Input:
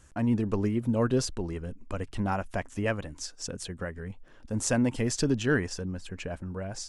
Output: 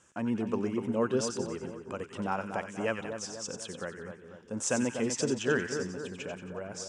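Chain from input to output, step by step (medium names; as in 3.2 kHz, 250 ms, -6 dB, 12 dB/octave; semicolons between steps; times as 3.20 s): cabinet simulation 220–8600 Hz, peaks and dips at 280 Hz -6 dB, 680 Hz -4 dB, 1.9 kHz -5 dB, 4.3 kHz -9 dB; two-band feedback delay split 1.4 kHz, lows 245 ms, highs 91 ms, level -7 dB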